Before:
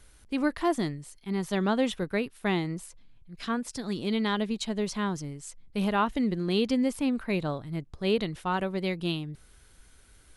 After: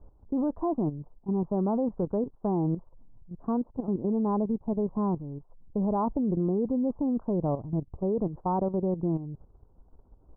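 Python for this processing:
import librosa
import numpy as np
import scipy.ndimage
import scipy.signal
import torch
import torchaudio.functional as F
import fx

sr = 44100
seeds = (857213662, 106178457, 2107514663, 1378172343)

y = scipy.signal.sosfilt(scipy.signal.butter(8, 1000.0, 'lowpass', fs=sr, output='sos'), x)
y = fx.level_steps(y, sr, step_db=11)
y = F.gain(torch.from_numpy(y), 7.0).numpy()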